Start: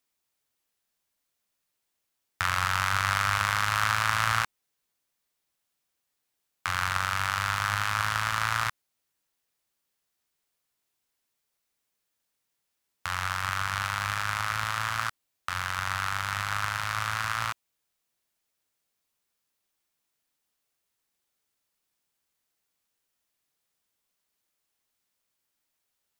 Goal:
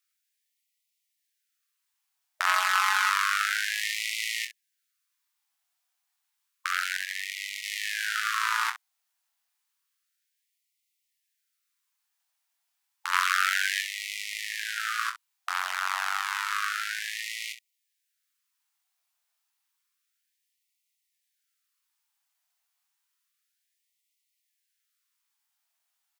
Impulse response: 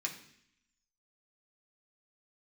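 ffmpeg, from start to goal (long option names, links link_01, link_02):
-filter_complex "[0:a]asettb=1/sr,asplit=3[link_01][link_02][link_03];[link_01]atrim=end=2.464[link_04];[link_02]atrim=start=2.46:end=3.09,asetpts=PTS-STARTPTS,afade=type=in:duration=0.004:curve=qsin,afade=type=out:start_time=0.626:duration=0.004:curve=qsin,aecho=1:1:4.7:0.72,atrim=end_sample=27783[link_05];[link_03]atrim=start=3.086[link_06];[link_04][link_05]acrossfade=duration=0.004:curve1=hsin:curve2=qsin[link_07];[link_07][link_06]acrossfade=duration=0.004:curve1=qsin:curve2=hsin,asplit=3[link_08][link_09][link_10];[link_08]afade=type=out:start_time=6.96:duration=0.02[link_11];[link_09]aeval=exprs='val(0)*sin(2*PI*420*n/s)':channel_layout=same,afade=type=in:start_time=6.96:duration=0.02,afade=type=out:start_time=7.61:duration=0.02[link_12];[link_10]afade=type=in:start_time=7.61:duration=0.02[link_13];[link_11][link_12][link_13]amix=inputs=3:normalize=0,asettb=1/sr,asplit=3[link_14][link_15][link_16];[link_14]atrim=end=13.134[link_17];[link_15]atrim=start=13.13:end=13.82,asetpts=PTS-STARTPTS,afade=type=in:duration=0.004:curve=qsin,afade=type=out:start_time=0.686:duration=0.004:curve=qsin,acontrast=62[link_18];[link_16]atrim=start=13.816[link_19];[link_17][link_18]acrossfade=duration=0.004:curve1=hsin:curve2=qsin[link_20];[link_20][link_19]acrossfade=duration=0.004:curve1=qsin:curve2=hsin,aecho=1:1:22|64:0.501|0.251,afftfilt=real='re*gte(b*sr/1024,620*pow(1900/620,0.5+0.5*sin(2*PI*0.3*pts/sr)))':imag='im*gte(b*sr/1024,620*pow(1900/620,0.5+0.5*sin(2*PI*0.3*pts/sr)))':win_size=1024:overlap=0.75"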